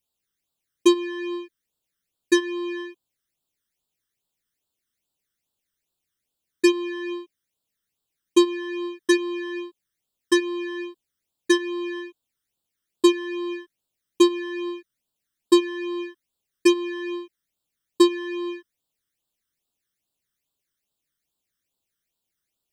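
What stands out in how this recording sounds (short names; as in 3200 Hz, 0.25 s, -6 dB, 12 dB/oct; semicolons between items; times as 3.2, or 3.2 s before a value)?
phasing stages 12, 2.4 Hz, lowest notch 750–2100 Hz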